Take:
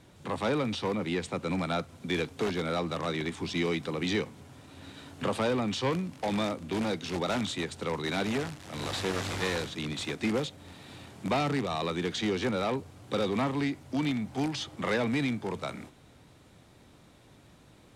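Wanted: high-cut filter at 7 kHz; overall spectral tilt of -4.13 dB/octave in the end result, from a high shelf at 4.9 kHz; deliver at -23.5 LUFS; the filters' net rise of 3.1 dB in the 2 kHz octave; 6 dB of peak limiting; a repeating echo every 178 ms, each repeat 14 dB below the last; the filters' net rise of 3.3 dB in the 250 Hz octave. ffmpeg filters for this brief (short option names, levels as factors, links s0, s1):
-af "lowpass=7000,equalizer=f=250:t=o:g=4,equalizer=f=2000:t=o:g=3,highshelf=f=4900:g=4.5,alimiter=limit=0.0891:level=0:latency=1,aecho=1:1:178|356:0.2|0.0399,volume=2.37"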